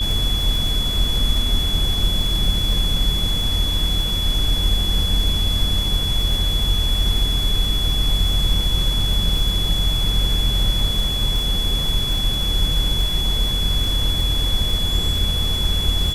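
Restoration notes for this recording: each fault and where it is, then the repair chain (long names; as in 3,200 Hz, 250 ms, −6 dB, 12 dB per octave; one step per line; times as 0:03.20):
surface crackle 54 per second −25 dBFS
whistle 3,400 Hz −22 dBFS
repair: click removal
notch filter 3,400 Hz, Q 30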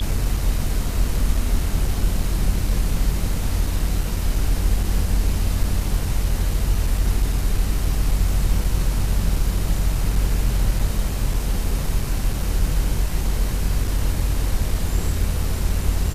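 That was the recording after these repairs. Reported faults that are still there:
none of them is left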